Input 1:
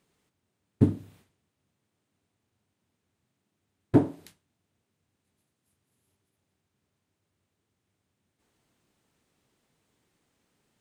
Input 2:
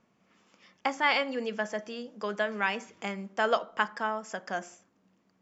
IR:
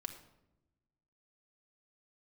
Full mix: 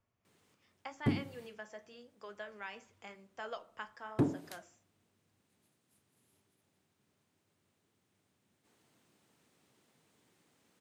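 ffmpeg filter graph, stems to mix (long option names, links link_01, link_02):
-filter_complex "[0:a]highpass=120,alimiter=limit=-17.5dB:level=0:latency=1:release=385,adelay=250,volume=2.5dB[link_01];[1:a]lowshelf=frequency=130:width_type=q:width=3:gain=10,flanger=delay=7:depth=6.5:regen=-65:speed=0.92:shape=sinusoidal,volume=-10.5dB[link_02];[link_01][link_02]amix=inputs=2:normalize=0,acrossover=split=350|3000[link_03][link_04][link_05];[link_04]acompressor=threshold=-43dB:ratio=1.5[link_06];[link_03][link_06][link_05]amix=inputs=3:normalize=0,asoftclip=type=tanh:threshold=-21dB"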